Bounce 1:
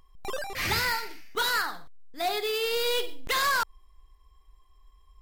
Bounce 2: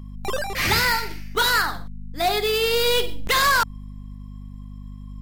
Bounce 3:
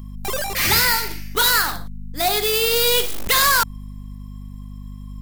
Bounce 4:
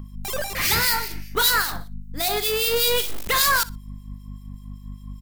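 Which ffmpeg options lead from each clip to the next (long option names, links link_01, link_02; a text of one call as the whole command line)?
ffmpeg -i in.wav -af "aeval=exprs='val(0)+0.00708*(sin(2*PI*50*n/s)+sin(2*PI*2*50*n/s)/2+sin(2*PI*3*50*n/s)/3+sin(2*PI*4*50*n/s)/4+sin(2*PI*5*50*n/s)/5)':channel_layout=same,equalizer=frequency=190:width_type=o:width=0.54:gain=4,volume=7dB" out.wav
ffmpeg -i in.wav -filter_complex "[0:a]asplit=2[link_01][link_02];[link_02]aeval=exprs='(mod(13.3*val(0)+1,2)-1)/13.3':channel_layout=same,volume=-9.5dB[link_03];[link_01][link_03]amix=inputs=2:normalize=0,crystalizer=i=1.5:c=0" out.wav
ffmpeg -i in.wav -filter_complex "[0:a]acrossover=split=2300[link_01][link_02];[link_01]aeval=exprs='val(0)*(1-0.7/2+0.7/2*cos(2*PI*5.1*n/s))':channel_layout=same[link_03];[link_02]aeval=exprs='val(0)*(1-0.7/2-0.7/2*cos(2*PI*5.1*n/s))':channel_layout=same[link_04];[link_03][link_04]amix=inputs=2:normalize=0,aecho=1:1:61|122:0.1|0.02" out.wav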